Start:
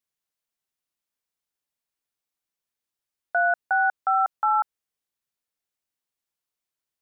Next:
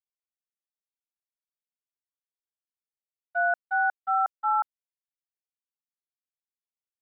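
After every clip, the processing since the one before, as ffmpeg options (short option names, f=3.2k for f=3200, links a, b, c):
-af "agate=range=-33dB:threshold=-17dB:ratio=3:detection=peak"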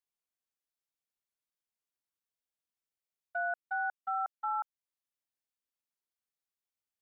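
-af "alimiter=level_in=2.5dB:limit=-24dB:level=0:latency=1:release=308,volume=-2.5dB"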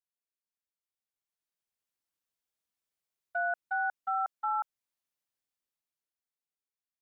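-af "dynaudnorm=f=260:g=11:m=11dB,volume=-8.5dB"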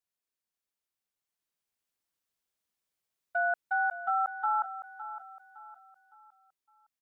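-af "aecho=1:1:561|1122|1683|2244:0.237|0.0877|0.0325|0.012,volume=2.5dB"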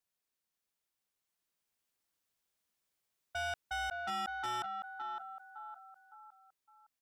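-af "asoftclip=type=tanh:threshold=-37dB,volume=2dB"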